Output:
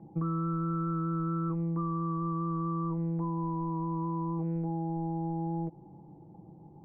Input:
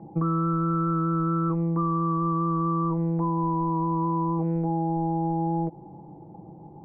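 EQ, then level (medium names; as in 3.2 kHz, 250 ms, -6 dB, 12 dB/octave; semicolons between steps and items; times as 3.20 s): distance through air 73 m; peaking EQ 710 Hz -5.5 dB 2 oct; -5.0 dB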